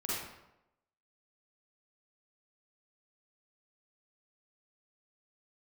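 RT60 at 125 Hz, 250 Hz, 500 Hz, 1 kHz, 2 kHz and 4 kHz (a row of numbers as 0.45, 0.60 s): 0.85, 0.85, 0.90, 0.85, 0.75, 0.60 s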